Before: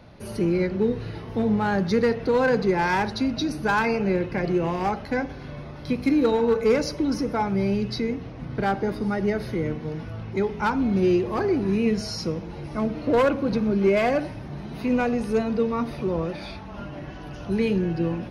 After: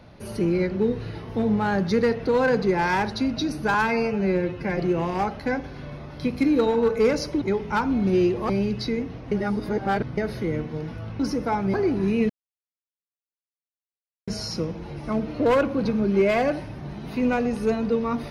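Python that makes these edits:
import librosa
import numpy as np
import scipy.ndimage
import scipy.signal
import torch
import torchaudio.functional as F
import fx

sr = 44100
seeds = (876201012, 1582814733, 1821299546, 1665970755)

y = fx.edit(x, sr, fx.stretch_span(start_s=3.74, length_s=0.69, factor=1.5),
    fx.swap(start_s=7.07, length_s=0.54, other_s=10.31, other_length_s=1.08),
    fx.reverse_span(start_s=8.43, length_s=0.86),
    fx.insert_silence(at_s=11.95, length_s=1.98), tone=tone)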